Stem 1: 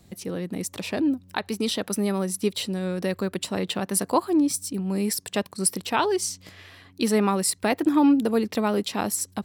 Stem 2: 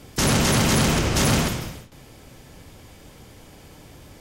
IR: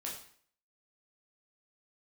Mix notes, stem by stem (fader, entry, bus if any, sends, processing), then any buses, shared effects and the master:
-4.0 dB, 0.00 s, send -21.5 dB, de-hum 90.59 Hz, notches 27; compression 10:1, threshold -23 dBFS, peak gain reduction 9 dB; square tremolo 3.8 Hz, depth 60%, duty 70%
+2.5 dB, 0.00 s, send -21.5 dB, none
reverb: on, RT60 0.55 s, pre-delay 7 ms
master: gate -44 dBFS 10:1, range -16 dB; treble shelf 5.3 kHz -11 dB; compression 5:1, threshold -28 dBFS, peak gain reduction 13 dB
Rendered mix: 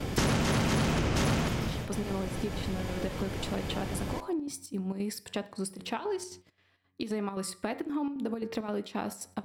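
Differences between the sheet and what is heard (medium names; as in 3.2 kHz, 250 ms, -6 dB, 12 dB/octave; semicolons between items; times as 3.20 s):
stem 2 +2.5 dB -> +10.5 dB; reverb return +7.5 dB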